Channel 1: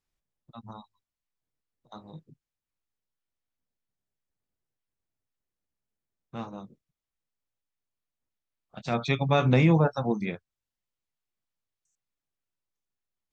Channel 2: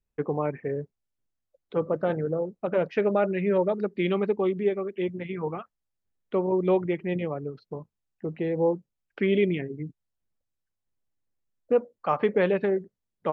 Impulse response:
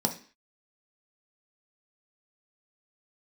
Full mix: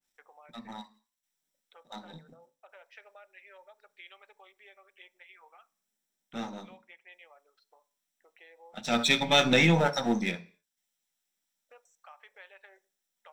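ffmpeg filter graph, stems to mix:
-filter_complex "[0:a]aeval=exprs='if(lt(val(0),0),0.447*val(0),val(0))':channel_layout=same,volume=-0.5dB,asplit=2[link_01][link_02];[link_02]volume=-7.5dB[link_03];[1:a]highpass=frequency=680:width=0.5412,highpass=frequency=680:width=1.3066,acompressor=threshold=-41dB:ratio=2.5,volume=-14.5dB,asplit=2[link_04][link_05];[link_05]volume=-16.5dB[link_06];[2:a]atrim=start_sample=2205[link_07];[link_03][link_06]amix=inputs=2:normalize=0[link_08];[link_08][link_07]afir=irnorm=-1:irlink=0[link_09];[link_01][link_04][link_09]amix=inputs=3:normalize=0,tiltshelf=frequency=1100:gain=-8.5,adynamicequalizer=threshold=0.02:dfrequency=1600:dqfactor=0.7:tfrequency=1600:tqfactor=0.7:attack=5:release=100:ratio=0.375:range=2:mode=boostabove:tftype=highshelf"

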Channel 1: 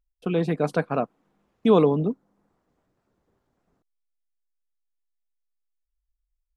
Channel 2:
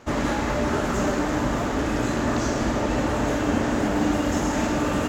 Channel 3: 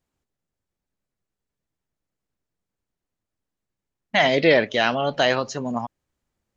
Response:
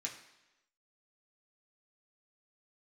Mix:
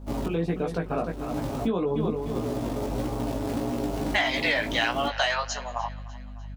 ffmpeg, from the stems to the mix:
-filter_complex "[0:a]volume=-4.5dB,asplit=3[link_01][link_02][link_03];[link_02]volume=-11.5dB[link_04];[1:a]lowpass=frequency=1000:width=0.5412,lowpass=frequency=1000:width=1.3066,aecho=1:1:7.4:0.51,acrusher=bits=3:mode=log:mix=0:aa=0.000001,volume=-11.5dB[link_05];[2:a]highpass=frequency=730:width=0.5412,highpass=frequency=730:width=1.3066,volume=-2dB,asplit=2[link_06][link_07];[link_07]volume=-21.5dB[link_08];[link_03]apad=whole_len=224672[link_09];[link_05][link_09]sidechaincompress=threshold=-42dB:ratio=10:attack=32:release=295[link_10];[link_01][link_10]amix=inputs=2:normalize=0,aeval=exprs='val(0)+0.00708*(sin(2*PI*50*n/s)+sin(2*PI*2*50*n/s)/2+sin(2*PI*3*50*n/s)/3+sin(2*PI*4*50*n/s)/4+sin(2*PI*5*50*n/s)/5)':channel_layout=same,alimiter=limit=-21dB:level=0:latency=1:release=154,volume=0dB[link_11];[link_04][link_08]amix=inputs=2:normalize=0,aecho=0:1:299|598|897|1196|1495|1794|2093:1|0.48|0.23|0.111|0.0531|0.0255|0.0122[link_12];[link_06][link_11][link_12]amix=inputs=3:normalize=0,acontrast=90,flanger=delay=16:depth=3:speed=1.6,acompressor=threshold=-21dB:ratio=6"

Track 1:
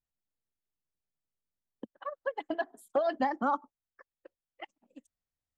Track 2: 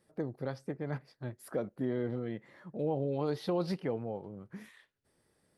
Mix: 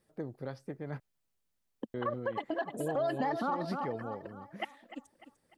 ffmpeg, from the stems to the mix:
ffmpeg -i stem1.wav -i stem2.wav -filter_complex "[0:a]alimiter=limit=-22.5dB:level=0:latency=1:release=22,volume=0dB,asplit=2[link_01][link_02];[link_02]volume=-13dB[link_03];[1:a]volume=-10dB,asplit=3[link_04][link_05][link_06];[link_04]atrim=end=1,asetpts=PTS-STARTPTS,afade=type=out:start_time=0.996:duration=0.004:curve=hsin[link_07];[link_05]atrim=start=1:end=1.94,asetpts=PTS-STARTPTS,volume=0[link_08];[link_06]atrim=start=1.94,asetpts=PTS-STARTPTS,afade=type=in:duration=0.004:curve=hsin[link_09];[link_07][link_08][link_09]concat=n=3:v=0:a=1[link_10];[link_03]aecho=0:1:299|598|897|1196|1495|1794:1|0.44|0.194|0.0852|0.0375|0.0165[link_11];[link_01][link_10][link_11]amix=inputs=3:normalize=0,acontrast=72,alimiter=limit=-24dB:level=0:latency=1:release=89" out.wav

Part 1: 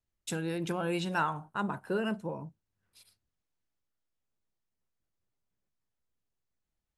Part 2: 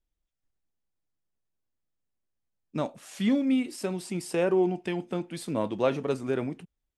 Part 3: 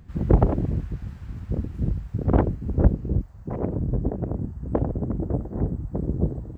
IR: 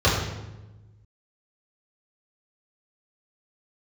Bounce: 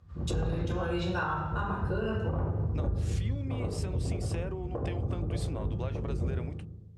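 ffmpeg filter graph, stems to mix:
-filter_complex "[0:a]volume=-1.5dB,asplit=2[link_01][link_02];[link_02]volume=-15.5dB[link_03];[1:a]adynamicequalizer=threshold=0.0126:dfrequency=260:dqfactor=1.1:tfrequency=260:tqfactor=1.1:attack=5:release=100:ratio=0.375:range=2:mode=cutabove:tftype=bell,acompressor=threshold=-25dB:ratio=6,volume=2dB[link_04];[2:a]equalizer=frequency=1200:width_type=o:width=0.24:gain=7.5,volume=-13dB,asplit=2[link_05][link_06];[link_06]volume=-17dB[link_07];[link_01][link_04]amix=inputs=2:normalize=0,acompressor=threshold=-38dB:ratio=3,volume=0dB[link_08];[3:a]atrim=start_sample=2205[link_09];[link_03][link_07]amix=inputs=2:normalize=0[link_10];[link_10][link_09]afir=irnorm=-1:irlink=0[link_11];[link_05][link_08][link_11]amix=inputs=3:normalize=0,lowpass=8500,lowshelf=frequency=280:gain=-7.5,alimiter=limit=-22dB:level=0:latency=1:release=108"

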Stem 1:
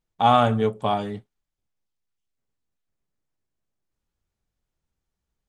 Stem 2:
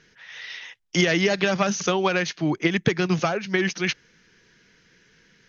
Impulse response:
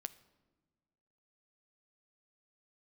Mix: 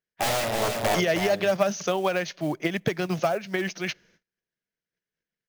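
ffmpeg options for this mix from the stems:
-filter_complex "[0:a]aeval=exprs='clip(val(0),-1,0.0708)':channel_layout=same,aeval=exprs='(mod(8.41*val(0)+1,2)-1)/8.41':channel_layout=same,volume=-2.5dB,asplit=2[link_01][link_02];[link_02]volume=-6.5dB[link_03];[1:a]volume=-7dB,asplit=3[link_04][link_05][link_06];[link_05]volume=-14.5dB[link_07];[link_06]apad=whole_len=242065[link_08];[link_01][link_08]sidechaincompress=threshold=-47dB:ratio=8:attack=30:release=102[link_09];[2:a]atrim=start_sample=2205[link_10];[link_07][link_10]afir=irnorm=-1:irlink=0[link_11];[link_03]aecho=0:1:316:1[link_12];[link_09][link_04][link_11][link_12]amix=inputs=4:normalize=0,agate=range=-30dB:threshold=-59dB:ratio=16:detection=peak,equalizer=frequency=630:width=2.9:gain=11,acrusher=bits=6:mode=log:mix=0:aa=0.000001"

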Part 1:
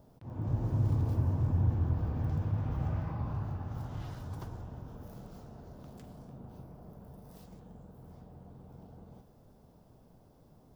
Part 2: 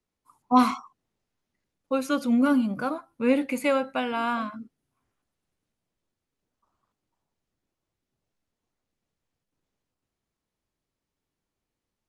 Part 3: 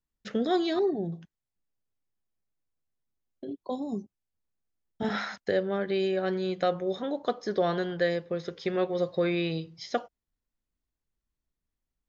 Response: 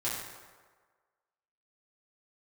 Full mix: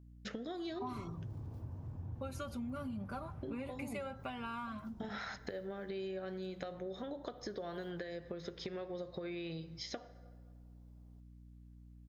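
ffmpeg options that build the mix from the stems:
-filter_complex "[0:a]adelay=450,volume=-13.5dB[link_01];[1:a]aecho=1:1:5.1:0.74,adelay=300,volume=-6dB[link_02];[2:a]acompressor=threshold=-30dB:ratio=6,aeval=exprs='val(0)+0.00158*(sin(2*PI*60*n/s)+sin(2*PI*2*60*n/s)/2+sin(2*PI*3*60*n/s)/3+sin(2*PI*4*60*n/s)/4+sin(2*PI*5*60*n/s)/5)':channel_layout=same,volume=0dB,asplit=2[link_03][link_04];[link_04]volume=-23dB[link_05];[link_02][link_03]amix=inputs=2:normalize=0,acompressor=threshold=-36dB:ratio=6,volume=0dB[link_06];[3:a]atrim=start_sample=2205[link_07];[link_05][link_07]afir=irnorm=-1:irlink=0[link_08];[link_01][link_06][link_08]amix=inputs=3:normalize=0,acompressor=threshold=-46dB:ratio=1.5"

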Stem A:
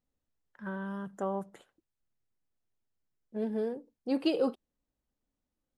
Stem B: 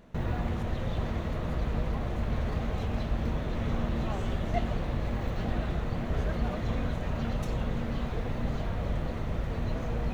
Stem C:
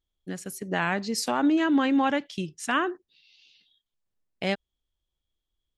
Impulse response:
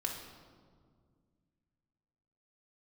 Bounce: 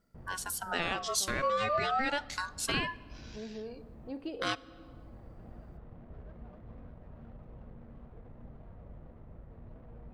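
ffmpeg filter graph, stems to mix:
-filter_complex "[0:a]aemphasis=mode=reproduction:type=50fm,volume=-11dB,asplit=3[link_01][link_02][link_03];[link_02]volume=-9.5dB[link_04];[1:a]highshelf=frequency=3500:gain=-9.5,adynamicsmooth=sensitivity=3.5:basefreq=1000,volume=-18.5dB[link_05];[2:a]highshelf=frequency=2600:gain=9,aeval=exprs='val(0)*sin(2*PI*1100*n/s+1100*0.25/0.36*sin(2*PI*0.36*n/s))':channel_layout=same,volume=1dB,asplit=2[link_06][link_07];[link_07]volume=-18.5dB[link_08];[link_03]apad=whole_len=447107[link_09];[link_05][link_09]sidechaincompress=threshold=-45dB:ratio=8:attack=16:release=833[link_10];[3:a]atrim=start_sample=2205[link_11];[link_04][link_08]amix=inputs=2:normalize=0[link_12];[link_12][link_11]afir=irnorm=-1:irlink=0[link_13];[link_01][link_10][link_06][link_13]amix=inputs=4:normalize=0,acompressor=threshold=-40dB:ratio=1.5"

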